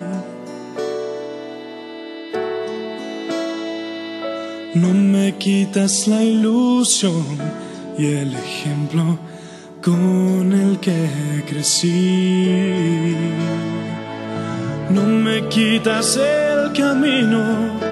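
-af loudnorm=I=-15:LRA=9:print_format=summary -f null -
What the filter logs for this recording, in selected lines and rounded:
Input Integrated:    -17.9 LUFS
Input True Peak:      -3.1 dBTP
Input LRA:             6.3 LU
Input Threshold:     -28.3 LUFS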